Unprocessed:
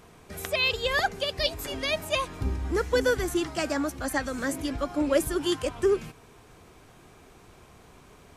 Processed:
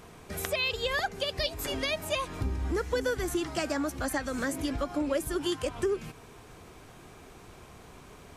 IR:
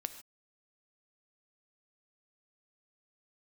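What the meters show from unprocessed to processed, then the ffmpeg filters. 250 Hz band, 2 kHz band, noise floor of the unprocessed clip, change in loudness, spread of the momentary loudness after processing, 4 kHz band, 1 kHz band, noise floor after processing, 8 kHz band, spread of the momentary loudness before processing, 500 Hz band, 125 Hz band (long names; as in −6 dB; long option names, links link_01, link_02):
−3.0 dB, −4.0 dB, −54 dBFS, −3.5 dB, 21 LU, −3.5 dB, −3.5 dB, −51 dBFS, −2.0 dB, 6 LU, −4.0 dB, −1.5 dB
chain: -af "acompressor=threshold=-31dB:ratio=3,volume=2.5dB"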